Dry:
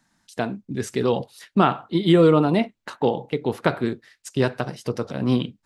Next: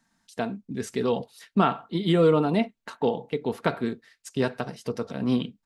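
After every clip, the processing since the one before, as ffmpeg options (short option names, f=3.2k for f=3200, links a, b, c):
-af "aecho=1:1:4.4:0.32,volume=-4.5dB"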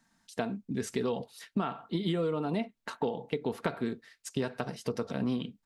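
-af "acompressor=threshold=-27dB:ratio=10"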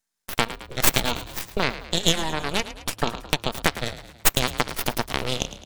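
-filter_complex "[0:a]crystalizer=i=10:c=0,aeval=exprs='0.501*(cos(1*acos(clip(val(0)/0.501,-1,1)))-cos(1*PI/2))+0.00398*(cos(3*acos(clip(val(0)/0.501,-1,1)))-cos(3*PI/2))+0.0316*(cos(5*acos(clip(val(0)/0.501,-1,1)))-cos(5*PI/2))+0.251*(cos(6*acos(clip(val(0)/0.501,-1,1)))-cos(6*PI/2))+0.0891*(cos(7*acos(clip(val(0)/0.501,-1,1)))-cos(7*PI/2))':c=same,asplit=6[a][b][c][d][e][f];[b]adelay=108,afreqshift=35,volume=-13.5dB[g];[c]adelay=216,afreqshift=70,volume=-19.2dB[h];[d]adelay=324,afreqshift=105,volume=-24.9dB[i];[e]adelay=432,afreqshift=140,volume=-30.5dB[j];[f]adelay=540,afreqshift=175,volume=-36.2dB[k];[a][g][h][i][j][k]amix=inputs=6:normalize=0"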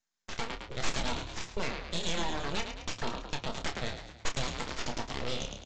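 -filter_complex "[0:a]aresample=16000,asoftclip=type=tanh:threshold=-18.5dB,aresample=44100,flanger=delay=3.2:depth=7.1:regen=-71:speed=1.9:shape=sinusoidal,asplit=2[a][b];[b]adelay=29,volume=-8dB[c];[a][c]amix=inputs=2:normalize=0"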